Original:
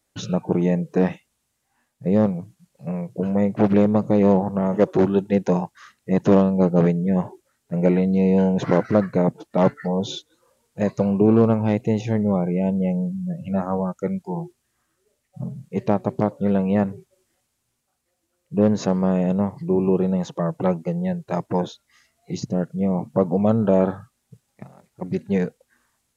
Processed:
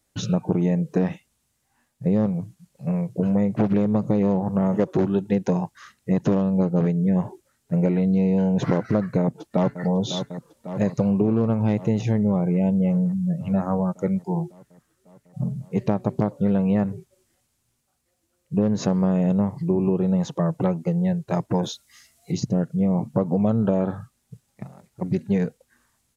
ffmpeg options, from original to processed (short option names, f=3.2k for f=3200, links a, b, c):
-filter_complex "[0:a]asplit=2[a][b];[b]afade=t=in:st=9.2:d=0.01,afade=t=out:st=9.82:d=0.01,aecho=0:1:550|1100|1650|2200|2750|3300|3850|4400|4950|5500|6050:0.199526|0.149645|0.112234|0.0841751|0.0631313|0.0473485|0.0355114|0.0266335|0.0199752|0.0149814|0.011236[c];[a][c]amix=inputs=2:normalize=0,asettb=1/sr,asplit=3[d][e][f];[d]atrim=end=21.634[g];[e]atrim=start=21.63:end=22.32,asetpts=PTS-STARTPTS,afade=t=in:d=0.004:c=qsin,afade=t=out:st=0.686:d=0.004:c=qsin,highshelf=f=3.2k:g=10.5[h];[f]atrim=start=22.316[i];[g][h]acrossfade=d=0.004:c1=hsin:c2=qsin[j];[j][i]acrossfade=d=0.004:c1=qsin:c2=hsin,bass=f=250:g=5,treble=f=4k:g=2,acompressor=threshold=-17dB:ratio=6"